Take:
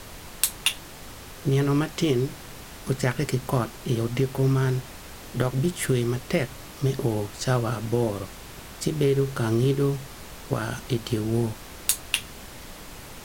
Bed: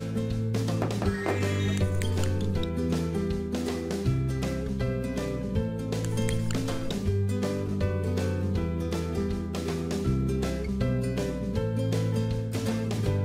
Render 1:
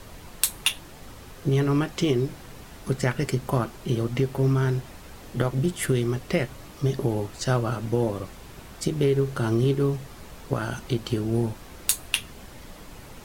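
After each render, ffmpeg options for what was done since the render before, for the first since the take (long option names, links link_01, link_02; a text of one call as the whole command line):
ffmpeg -i in.wav -af "afftdn=noise_reduction=6:noise_floor=-43" out.wav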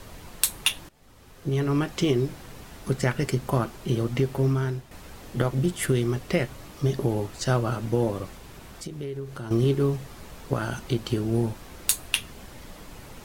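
ffmpeg -i in.wav -filter_complex "[0:a]asettb=1/sr,asplit=3[link_01][link_02][link_03];[link_01]atrim=end=8.374[link_04];[link_02]atrim=start=8.37:end=9.51,asetpts=PTS-STARTPTS,afade=type=in:duration=0.004:curve=qsin,afade=type=out:start_time=1.136:duration=0.004:curve=qsin,acompressor=threshold=-40dB:ratio=2:attack=3.2:release=140:knee=1:detection=peak[link_05];[link_03]atrim=start=9.506[link_06];[link_04][link_05]acrossfade=duration=0.004:curve1=hsin:curve2=qsin[link_07];[link_07][link_06]acrossfade=duration=0.004:curve1=qsin:curve2=hsin,asplit=3[link_08][link_09][link_10];[link_08]atrim=end=0.89,asetpts=PTS-STARTPTS,afade=type=out:start_time=0.886:duration=0.004:curve=hsin:silence=0.1[link_11];[link_09]atrim=start=0.89:end=4.91,asetpts=PTS-STARTPTS,afade=type=in:duration=1.03:silence=0.1,afade=type=out:start_time=3.48:duration=0.54:silence=0.334965[link_12];[link_10]atrim=start=4.91,asetpts=PTS-STARTPTS,afade=type=in:duration=0.004:curve=hsin:silence=0.334965[link_13];[link_11][link_12][link_13]concat=n=3:v=0:a=1" out.wav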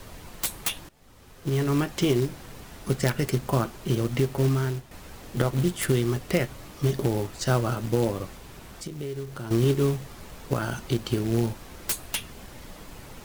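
ffmpeg -i in.wav -filter_complex "[0:a]acrossover=split=820[link_01][link_02];[link_02]aeval=exprs='(mod(7.94*val(0)+1,2)-1)/7.94':channel_layout=same[link_03];[link_01][link_03]amix=inputs=2:normalize=0,acrusher=bits=4:mode=log:mix=0:aa=0.000001" out.wav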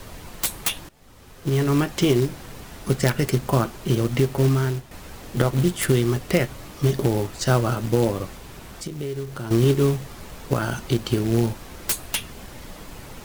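ffmpeg -i in.wav -af "volume=4dB" out.wav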